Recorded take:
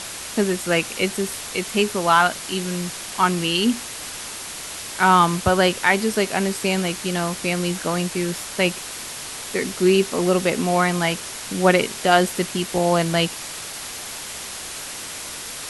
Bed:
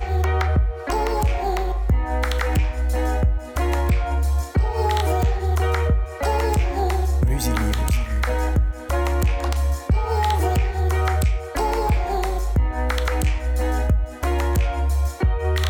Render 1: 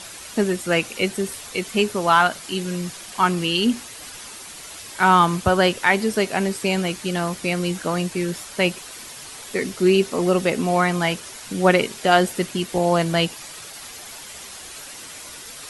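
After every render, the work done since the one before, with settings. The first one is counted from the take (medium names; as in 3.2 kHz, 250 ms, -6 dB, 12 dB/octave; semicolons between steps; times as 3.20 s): noise reduction 8 dB, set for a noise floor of -34 dBFS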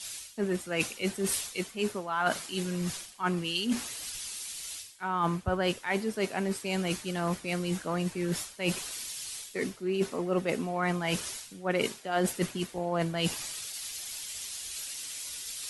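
reverse; compression 8:1, threshold -27 dBFS, peak gain reduction 17 dB; reverse; three bands expanded up and down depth 100%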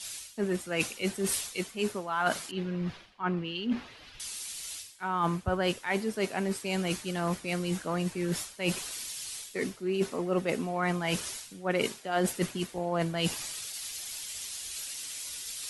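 2.51–4.20 s: distance through air 320 m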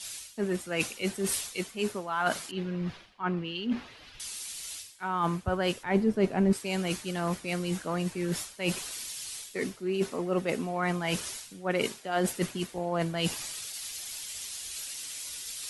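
5.83–6.53 s: tilt EQ -3.5 dB/octave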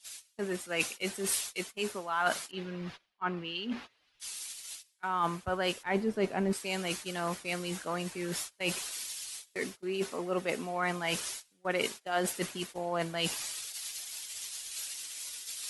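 gate -39 dBFS, range -20 dB; bass shelf 300 Hz -10.5 dB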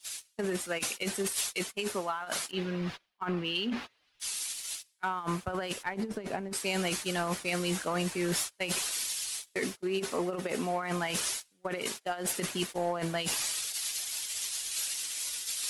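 compressor with a negative ratio -34 dBFS, ratio -0.5; waveshaping leveller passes 1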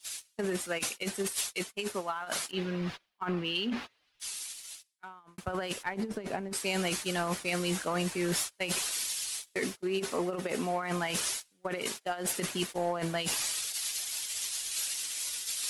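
0.89–2.16 s: upward expansion, over -47 dBFS; 3.82–5.38 s: fade out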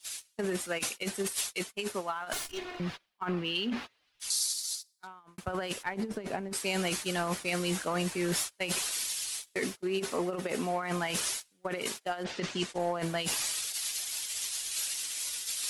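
2.33–2.80 s: comb filter that takes the minimum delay 2.8 ms; 4.30–5.07 s: resonant high shelf 3.5 kHz +8 dB, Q 3; 12.23–12.78 s: low-pass 4.2 kHz -> 10 kHz 24 dB/octave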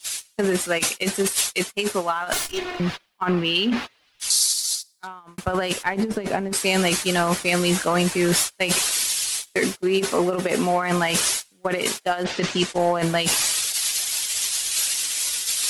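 trim +11 dB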